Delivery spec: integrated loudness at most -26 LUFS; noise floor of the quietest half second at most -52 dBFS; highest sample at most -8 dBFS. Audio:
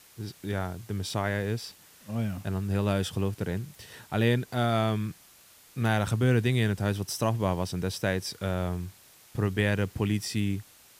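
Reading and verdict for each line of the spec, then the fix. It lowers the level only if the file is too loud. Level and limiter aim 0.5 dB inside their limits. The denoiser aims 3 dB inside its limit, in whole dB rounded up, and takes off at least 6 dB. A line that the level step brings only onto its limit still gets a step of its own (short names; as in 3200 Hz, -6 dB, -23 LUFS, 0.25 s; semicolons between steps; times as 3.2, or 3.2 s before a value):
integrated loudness -29.5 LUFS: OK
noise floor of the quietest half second -56 dBFS: OK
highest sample -11.0 dBFS: OK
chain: none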